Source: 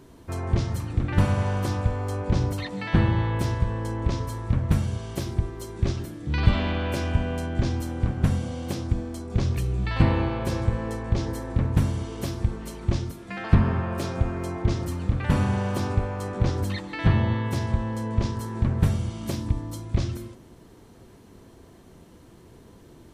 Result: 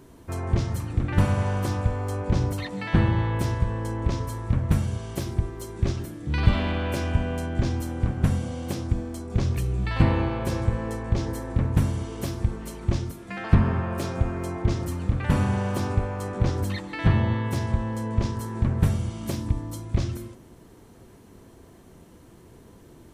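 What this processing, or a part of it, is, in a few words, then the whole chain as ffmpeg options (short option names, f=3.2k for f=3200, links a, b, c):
exciter from parts: -filter_complex "[0:a]asplit=2[a][b];[b]highpass=2.9k,asoftclip=type=tanh:threshold=-38.5dB,highpass=4.2k,volume=-8dB[c];[a][c]amix=inputs=2:normalize=0"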